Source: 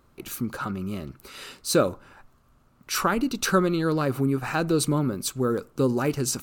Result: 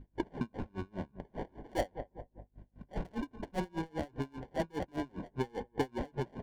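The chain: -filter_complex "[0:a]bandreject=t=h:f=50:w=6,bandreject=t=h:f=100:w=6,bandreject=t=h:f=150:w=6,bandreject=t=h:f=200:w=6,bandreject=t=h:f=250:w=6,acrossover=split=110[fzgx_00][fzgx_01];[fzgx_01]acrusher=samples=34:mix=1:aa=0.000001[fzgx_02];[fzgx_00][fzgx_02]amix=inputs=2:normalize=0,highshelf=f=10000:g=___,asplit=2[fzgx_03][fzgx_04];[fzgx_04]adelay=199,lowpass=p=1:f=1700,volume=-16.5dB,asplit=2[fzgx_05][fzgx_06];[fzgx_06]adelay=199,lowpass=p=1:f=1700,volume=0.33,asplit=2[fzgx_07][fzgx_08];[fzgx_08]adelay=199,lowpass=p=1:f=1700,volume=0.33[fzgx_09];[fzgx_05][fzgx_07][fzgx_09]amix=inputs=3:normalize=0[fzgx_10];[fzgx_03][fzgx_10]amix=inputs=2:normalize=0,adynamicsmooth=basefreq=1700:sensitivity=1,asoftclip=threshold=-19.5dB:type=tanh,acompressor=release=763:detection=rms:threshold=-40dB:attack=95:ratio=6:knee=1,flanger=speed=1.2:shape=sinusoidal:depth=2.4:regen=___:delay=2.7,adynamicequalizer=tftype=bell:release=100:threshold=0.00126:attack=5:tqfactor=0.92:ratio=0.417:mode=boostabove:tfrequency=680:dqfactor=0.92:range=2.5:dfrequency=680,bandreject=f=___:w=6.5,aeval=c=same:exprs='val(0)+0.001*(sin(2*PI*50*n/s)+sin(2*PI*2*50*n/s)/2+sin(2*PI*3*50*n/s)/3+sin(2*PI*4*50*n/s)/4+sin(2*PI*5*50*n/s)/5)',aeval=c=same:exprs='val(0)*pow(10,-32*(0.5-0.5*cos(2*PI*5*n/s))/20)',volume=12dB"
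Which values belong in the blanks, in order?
11, -60, 1200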